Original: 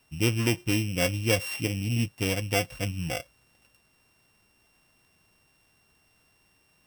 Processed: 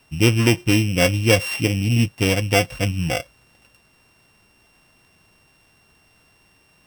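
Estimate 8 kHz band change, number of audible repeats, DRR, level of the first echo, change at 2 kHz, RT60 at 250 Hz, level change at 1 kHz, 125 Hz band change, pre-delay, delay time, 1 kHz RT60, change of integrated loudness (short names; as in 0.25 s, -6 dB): +6.0 dB, none, none, none, +8.5 dB, none, +9.0 dB, +9.0 dB, none, none, none, +8.5 dB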